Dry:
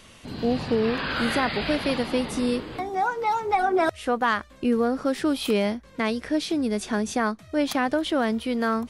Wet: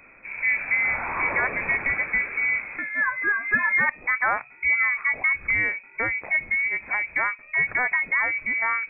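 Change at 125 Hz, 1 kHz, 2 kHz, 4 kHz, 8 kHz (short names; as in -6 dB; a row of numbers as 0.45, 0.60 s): -8.0 dB, -4.5 dB, +11.0 dB, under -35 dB, under -40 dB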